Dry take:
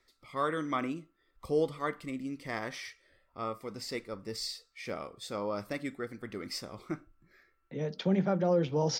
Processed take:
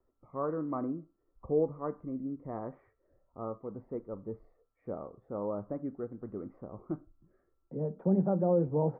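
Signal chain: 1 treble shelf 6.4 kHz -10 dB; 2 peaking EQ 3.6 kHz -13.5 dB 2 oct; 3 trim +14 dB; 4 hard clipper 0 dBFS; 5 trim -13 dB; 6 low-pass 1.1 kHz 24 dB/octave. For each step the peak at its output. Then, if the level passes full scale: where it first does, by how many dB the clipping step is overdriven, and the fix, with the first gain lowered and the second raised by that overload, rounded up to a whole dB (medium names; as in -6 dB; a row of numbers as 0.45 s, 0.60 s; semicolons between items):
-18.0 dBFS, -18.5 dBFS, -4.5 dBFS, -4.5 dBFS, -17.5 dBFS, -17.5 dBFS; nothing clips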